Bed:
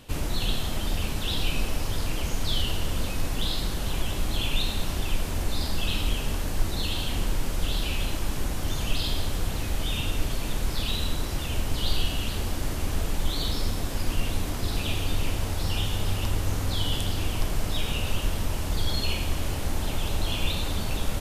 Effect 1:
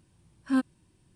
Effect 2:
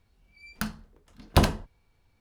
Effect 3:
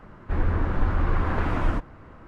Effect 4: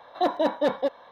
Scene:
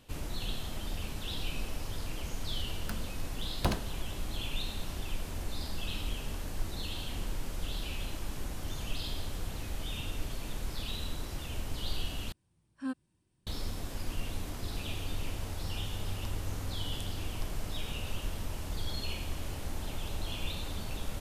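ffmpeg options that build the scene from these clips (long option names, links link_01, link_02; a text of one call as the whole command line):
ffmpeg -i bed.wav -i cue0.wav -i cue1.wav -filter_complex "[0:a]volume=-9.5dB,asplit=2[link_01][link_02];[link_01]atrim=end=12.324[link_03];[1:a]atrim=end=1.15,asetpts=PTS-STARTPTS,volume=-11dB[link_04];[link_02]atrim=start=13.466[link_05];[2:a]atrim=end=2.2,asetpts=PTS-STARTPTS,volume=-10dB,afade=type=in:duration=0.004:curve=hsin,afade=type=out:start_time=2.196:duration=0.004:curve=hsin,adelay=2280[link_06];[link_03][link_04]acrossfade=duration=0.004:curve1=hsin:curve2=hsin[link_07];[link_07][link_05]acrossfade=duration=0.004:curve1=hsin:curve2=hsin[link_08];[link_08][link_06]amix=inputs=2:normalize=0" out.wav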